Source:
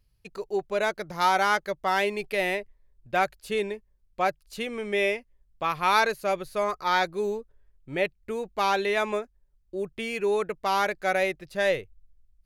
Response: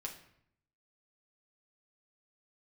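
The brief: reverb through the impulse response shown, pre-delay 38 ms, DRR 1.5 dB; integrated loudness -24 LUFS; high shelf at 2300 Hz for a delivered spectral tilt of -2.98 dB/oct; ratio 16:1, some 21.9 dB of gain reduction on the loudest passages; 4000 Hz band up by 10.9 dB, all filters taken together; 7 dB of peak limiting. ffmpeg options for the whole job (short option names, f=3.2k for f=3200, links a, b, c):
-filter_complex "[0:a]highshelf=f=2.3k:g=6.5,equalizer=f=4k:t=o:g=7.5,acompressor=threshold=-35dB:ratio=16,alimiter=level_in=4.5dB:limit=-24dB:level=0:latency=1,volume=-4.5dB,asplit=2[a][b];[1:a]atrim=start_sample=2205,adelay=38[c];[b][c]afir=irnorm=-1:irlink=0,volume=0dB[d];[a][d]amix=inputs=2:normalize=0,volume=14.5dB"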